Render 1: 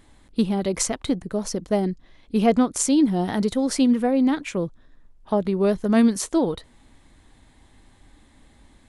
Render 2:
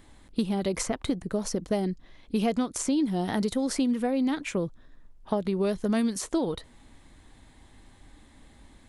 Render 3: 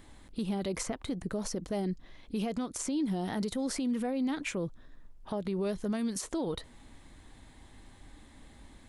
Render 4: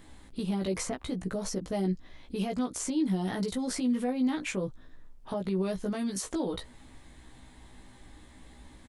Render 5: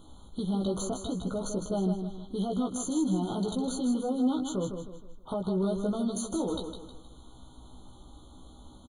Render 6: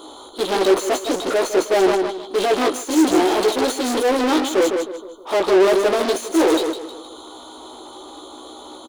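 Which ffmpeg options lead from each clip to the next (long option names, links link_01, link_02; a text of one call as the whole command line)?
ffmpeg -i in.wav -filter_complex "[0:a]acrossover=split=2400|6400[link_01][link_02][link_03];[link_01]acompressor=threshold=-24dB:ratio=4[link_04];[link_02]acompressor=threshold=-40dB:ratio=4[link_05];[link_03]acompressor=threshold=-36dB:ratio=4[link_06];[link_04][link_05][link_06]amix=inputs=3:normalize=0" out.wav
ffmpeg -i in.wav -af "alimiter=level_in=1dB:limit=-24dB:level=0:latency=1:release=88,volume=-1dB" out.wav
ffmpeg -i in.wav -filter_complex "[0:a]asplit=2[link_01][link_02];[link_02]adelay=16,volume=-3dB[link_03];[link_01][link_03]amix=inputs=2:normalize=0" out.wav
ffmpeg -i in.wav -filter_complex "[0:a]asplit=2[link_01][link_02];[link_02]asoftclip=type=hard:threshold=-29dB,volume=-7.5dB[link_03];[link_01][link_03]amix=inputs=2:normalize=0,aecho=1:1:157|314|471|628:0.447|0.17|0.0645|0.0245,afftfilt=real='re*eq(mod(floor(b*sr/1024/1500),2),0)':imag='im*eq(mod(floor(b*sr/1024/1500),2),0)':win_size=1024:overlap=0.75,volume=-2dB" out.wav
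ffmpeg -i in.wav -filter_complex "[0:a]asplit=2[link_01][link_02];[link_02]highpass=frequency=720:poles=1,volume=37dB,asoftclip=type=tanh:threshold=-18dB[link_03];[link_01][link_03]amix=inputs=2:normalize=0,lowpass=frequency=5600:poles=1,volume=-6dB,agate=range=-15dB:threshold=-25dB:ratio=16:detection=peak,lowshelf=frequency=250:width_type=q:width=3:gain=-11,volume=7dB" out.wav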